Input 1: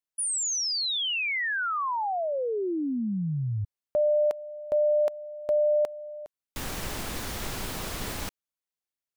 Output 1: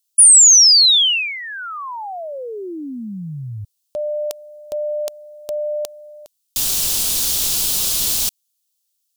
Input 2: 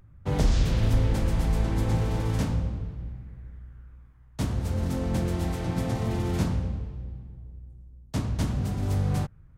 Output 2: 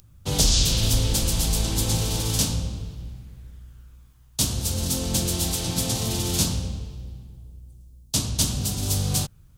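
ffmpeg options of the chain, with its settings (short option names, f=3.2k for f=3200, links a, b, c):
-af "aexciter=amount=8.3:drive=4.9:freq=2.9k"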